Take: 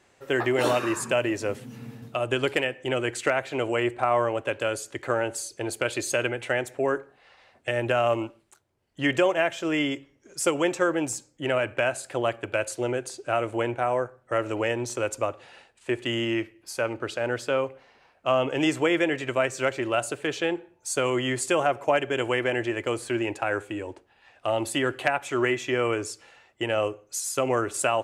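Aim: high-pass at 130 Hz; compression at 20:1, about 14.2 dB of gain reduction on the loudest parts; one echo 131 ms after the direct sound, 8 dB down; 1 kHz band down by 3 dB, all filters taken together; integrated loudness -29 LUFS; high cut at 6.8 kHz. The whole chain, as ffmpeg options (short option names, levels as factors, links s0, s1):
-af "highpass=130,lowpass=6800,equalizer=f=1000:t=o:g=-4.5,acompressor=threshold=0.0224:ratio=20,aecho=1:1:131:0.398,volume=2.82"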